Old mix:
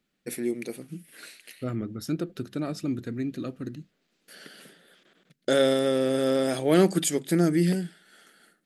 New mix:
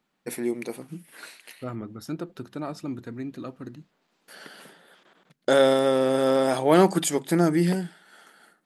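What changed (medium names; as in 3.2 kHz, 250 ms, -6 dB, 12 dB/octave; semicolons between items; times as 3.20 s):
second voice -4.5 dB; master: add peaking EQ 930 Hz +13.5 dB 0.88 oct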